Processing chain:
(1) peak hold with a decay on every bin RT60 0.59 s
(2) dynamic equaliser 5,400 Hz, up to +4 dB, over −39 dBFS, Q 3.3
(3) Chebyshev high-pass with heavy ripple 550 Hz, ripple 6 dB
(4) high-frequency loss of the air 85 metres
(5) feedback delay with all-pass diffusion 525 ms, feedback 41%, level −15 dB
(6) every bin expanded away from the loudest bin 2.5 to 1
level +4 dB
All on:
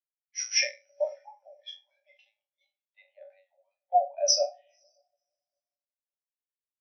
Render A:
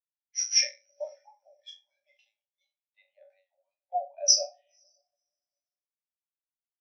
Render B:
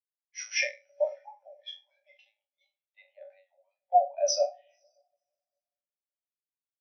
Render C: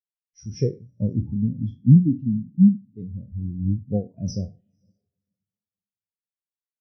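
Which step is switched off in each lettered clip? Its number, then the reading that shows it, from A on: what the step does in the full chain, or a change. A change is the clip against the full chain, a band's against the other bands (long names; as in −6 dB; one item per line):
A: 4, change in crest factor +3.5 dB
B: 2, 4 kHz band −8.0 dB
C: 3, change in crest factor −4.5 dB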